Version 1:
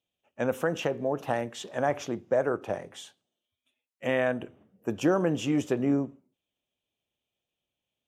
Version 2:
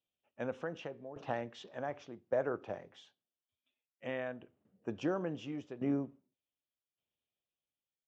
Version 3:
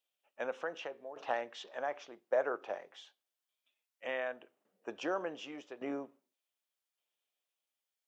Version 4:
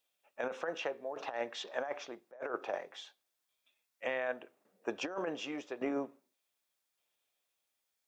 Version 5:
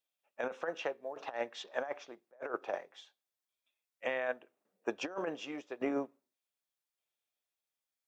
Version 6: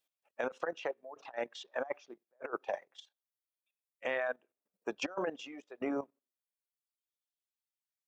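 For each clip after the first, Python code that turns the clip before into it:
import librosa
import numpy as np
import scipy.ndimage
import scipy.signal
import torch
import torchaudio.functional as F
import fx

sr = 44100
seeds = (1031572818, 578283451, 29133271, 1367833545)

y1 = scipy.signal.sosfilt(scipy.signal.butter(4, 5300.0, 'lowpass', fs=sr, output='sos'), x)
y1 = fx.tremolo_shape(y1, sr, shape='saw_down', hz=0.86, depth_pct=80)
y1 = y1 * librosa.db_to_amplitude(-7.0)
y2 = scipy.signal.sosfilt(scipy.signal.butter(2, 550.0, 'highpass', fs=sr, output='sos'), y1)
y2 = y2 * librosa.db_to_amplitude(4.5)
y3 = fx.notch(y2, sr, hz=3000.0, q=13.0)
y3 = fx.over_compress(y3, sr, threshold_db=-38.0, ratio=-0.5)
y3 = y3 * librosa.db_to_amplitude(3.0)
y4 = fx.upward_expand(y3, sr, threshold_db=-53.0, expansion=1.5)
y4 = y4 * librosa.db_to_amplitude(2.0)
y5 = fx.dereverb_blind(y4, sr, rt60_s=1.9)
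y5 = fx.level_steps(y5, sr, step_db=13)
y5 = y5 * librosa.db_to_amplitude(5.5)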